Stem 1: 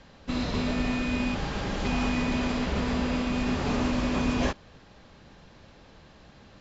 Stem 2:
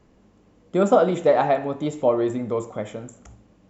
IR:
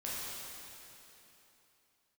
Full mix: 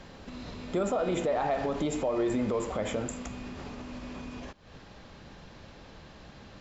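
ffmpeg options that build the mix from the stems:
-filter_complex "[0:a]acompressor=threshold=-35dB:ratio=6,alimiter=level_in=11.5dB:limit=-24dB:level=0:latency=1:release=231,volume=-11.5dB,volume=-4dB[a];[1:a]lowshelf=f=230:g=-7.5,acompressor=threshold=-28dB:ratio=6,volume=0dB[b];[a][b]amix=inputs=2:normalize=0,acontrast=75,alimiter=limit=-20.5dB:level=0:latency=1:release=55"

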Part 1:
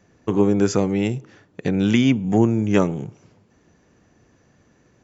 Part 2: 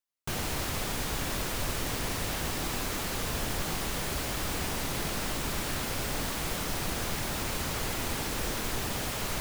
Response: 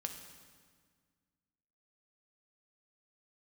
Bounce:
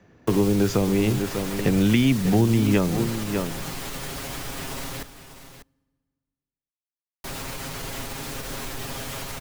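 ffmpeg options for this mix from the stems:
-filter_complex "[0:a]lowpass=4k,volume=2.5dB,asplit=2[a][b];[b]volume=-11.5dB[c];[1:a]aecho=1:1:7.4:0.65,alimiter=limit=-23.5dB:level=0:latency=1:release=67,volume=-2dB,asplit=3[d][e][f];[d]atrim=end=5.03,asetpts=PTS-STARTPTS,afade=t=out:st=5.026:d=0.004:c=hsin[g];[e]atrim=start=5.03:end=7.24,asetpts=PTS-STARTPTS,volume=0[h];[f]atrim=start=7.24,asetpts=PTS-STARTPTS,afade=t=in:d=0.004:c=hsin[i];[g][h][i]concat=n=3:v=0:a=1,asplit=3[j][k][l];[k]volume=-8.5dB[m];[l]volume=-10dB[n];[2:a]atrim=start_sample=2205[o];[m][o]afir=irnorm=-1:irlink=0[p];[c][n]amix=inputs=2:normalize=0,aecho=0:1:594:1[q];[a][j][p][q]amix=inputs=4:normalize=0,acrossover=split=130|3000[r][s][t];[s]acompressor=threshold=-18dB:ratio=6[u];[r][u][t]amix=inputs=3:normalize=0"

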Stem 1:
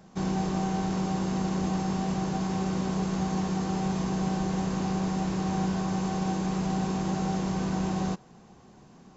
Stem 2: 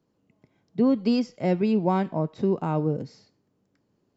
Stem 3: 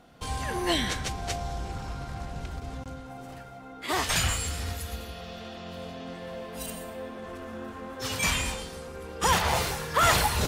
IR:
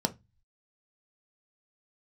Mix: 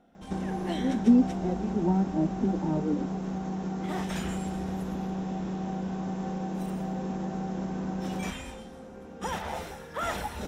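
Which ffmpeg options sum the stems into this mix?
-filter_complex "[0:a]acompressor=threshold=-35dB:ratio=6,adelay=150,volume=2dB,asplit=2[a][b];[b]volume=-18dB[c];[1:a]equalizer=f=300:w=1.9:g=13,asplit=2[d][e];[e]adelay=2.8,afreqshift=2.2[f];[d][f]amix=inputs=2:normalize=1,volume=-16dB,asplit=2[g][h];[h]volume=-5dB[i];[2:a]volume=-10.5dB,asplit=2[j][k];[k]volume=-14dB[l];[3:a]atrim=start_sample=2205[m];[c][i][l]amix=inputs=3:normalize=0[n];[n][m]afir=irnorm=-1:irlink=0[o];[a][g][j][o]amix=inputs=4:normalize=0,highshelf=f=2.9k:g=-8.5"

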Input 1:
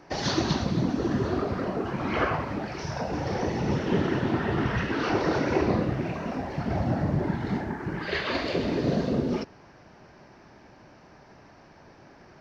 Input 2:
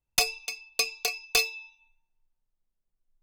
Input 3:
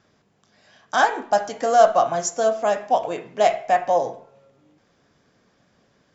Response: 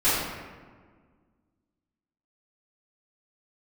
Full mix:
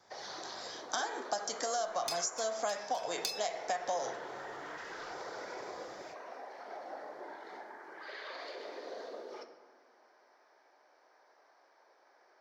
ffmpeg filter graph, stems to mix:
-filter_complex "[0:a]highpass=f=480:w=0.5412,highpass=f=480:w=1.3066,alimiter=limit=-24dB:level=0:latency=1,volume=-12dB,asplit=2[a][b];[b]volume=-22dB[c];[1:a]adelay=1900,volume=-6dB[d];[2:a]highshelf=f=5.2k:g=9,dynaudnorm=f=120:g=3:m=14.5dB,volume=-13.5dB,asplit=2[e][f];[f]apad=whole_len=226099[g];[d][g]sidechaincompress=threshold=-37dB:ratio=8:attack=16:release=289[h];[h][e]amix=inputs=2:normalize=0,equalizer=f=4.7k:t=o:w=1.9:g=10,acompressor=threshold=-27dB:ratio=6,volume=0dB[i];[3:a]atrim=start_sample=2205[j];[c][j]afir=irnorm=-1:irlink=0[k];[a][i][k]amix=inputs=3:normalize=0,equalizer=f=2.7k:t=o:w=0.31:g=-9.5,acrossover=split=280|650[l][m][n];[l]acompressor=threshold=-59dB:ratio=4[o];[m]acompressor=threshold=-41dB:ratio=4[p];[n]acompressor=threshold=-33dB:ratio=4[q];[o][p][q]amix=inputs=3:normalize=0"

